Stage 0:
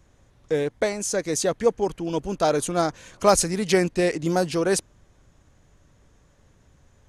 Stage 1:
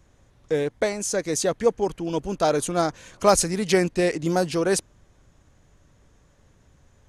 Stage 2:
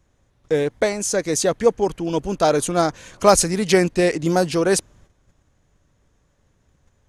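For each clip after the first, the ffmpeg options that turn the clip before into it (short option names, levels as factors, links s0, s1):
-af anull
-af "agate=range=0.355:threshold=0.00224:ratio=16:detection=peak,volume=1.58"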